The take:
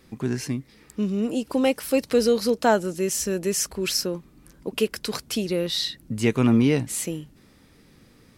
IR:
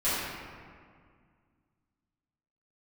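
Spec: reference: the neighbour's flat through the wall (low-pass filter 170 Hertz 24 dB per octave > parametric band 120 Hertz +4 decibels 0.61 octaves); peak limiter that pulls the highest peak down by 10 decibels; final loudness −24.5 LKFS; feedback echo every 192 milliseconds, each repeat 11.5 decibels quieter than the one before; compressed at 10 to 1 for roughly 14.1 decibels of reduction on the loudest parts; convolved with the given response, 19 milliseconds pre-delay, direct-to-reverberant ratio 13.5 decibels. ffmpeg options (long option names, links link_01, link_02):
-filter_complex "[0:a]acompressor=threshold=-29dB:ratio=10,alimiter=level_in=3dB:limit=-24dB:level=0:latency=1,volume=-3dB,aecho=1:1:192|384|576:0.266|0.0718|0.0194,asplit=2[link_01][link_02];[1:a]atrim=start_sample=2205,adelay=19[link_03];[link_02][link_03]afir=irnorm=-1:irlink=0,volume=-25.5dB[link_04];[link_01][link_04]amix=inputs=2:normalize=0,lowpass=frequency=170:width=0.5412,lowpass=frequency=170:width=1.3066,equalizer=frequency=120:width_type=o:width=0.61:gain=4,volume=20.5dB"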